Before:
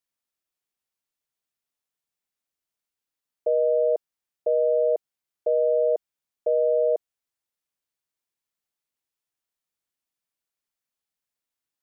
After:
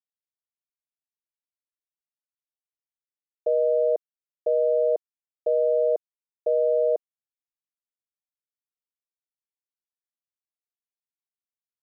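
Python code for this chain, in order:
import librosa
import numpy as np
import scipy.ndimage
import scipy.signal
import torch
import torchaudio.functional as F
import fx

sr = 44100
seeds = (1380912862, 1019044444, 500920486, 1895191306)

y = fx.quant_dither(x, sr, seeds[0], bits=10, dither='none')
y = fx.air_absorb(y, sr, metres=99.0)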